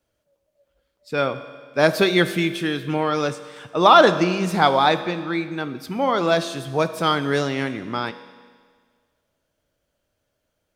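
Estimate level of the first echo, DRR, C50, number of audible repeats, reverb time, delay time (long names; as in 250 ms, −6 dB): no echo audible, 11.0 dB, 12.5 dB, no echo audible, 1.7 s, no echo audible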